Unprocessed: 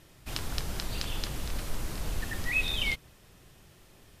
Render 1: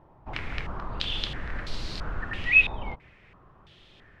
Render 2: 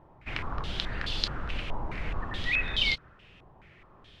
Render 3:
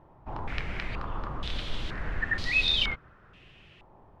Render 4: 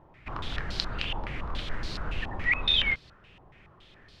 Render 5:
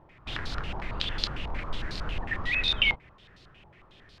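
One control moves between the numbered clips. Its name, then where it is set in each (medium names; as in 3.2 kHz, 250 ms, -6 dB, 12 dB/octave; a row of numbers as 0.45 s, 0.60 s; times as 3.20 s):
step-sequenced low-pass, rate: 3 Hz, 4.7 Hz, 2.1 Hz, 7.1 Hz, 11 Hz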